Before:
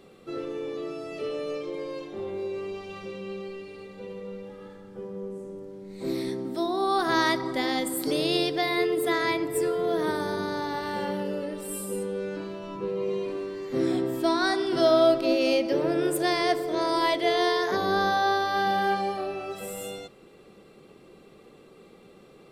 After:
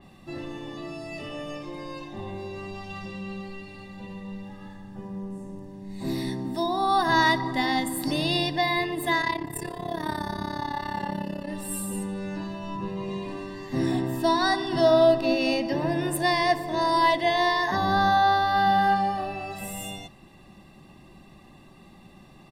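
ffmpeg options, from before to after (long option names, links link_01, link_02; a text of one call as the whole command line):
ffmpeg -i in.wav -filter_complex "[0:a]asplit=3[link_01][link_02][link_03];[link_01]afade=type=out:start_time=9.21:duration=0.02[link_04];[link_02]tremolo=f=34:d=0.857,afade=type=in:start_time=9.21:duration=0.02,afade=type=out:start_time=11.47:duration=0.02[link_05];[link_03]afade=type=in:start_time=11.47:duration=0.02[link_06];[link_04][link_05][link_06]amix=inputs=3:normalize=0,lowshelf=frequency=110:gain=7.5,aecho=1:1:1.1:0.96,adynamicequalizer=threshold=0.0112:dfrequency=3800:dqfactor=0.7:tfrequency=3800:tqfactor=0.7:attack=5:release=100:ratio=0.375:range=2.5:mode=cutabove:tftype=highshelf" out.wav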